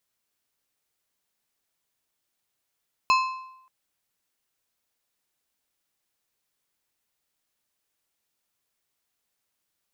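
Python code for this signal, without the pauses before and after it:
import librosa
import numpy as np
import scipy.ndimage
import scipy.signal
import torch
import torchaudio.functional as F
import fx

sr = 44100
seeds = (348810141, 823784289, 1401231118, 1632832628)

y = fx.strike_metal(sr, length_s=0.58, level_db=-15.5, body='plate', hz=1040.0, decay_s=0.82, tilt_db=5.5, modes=5)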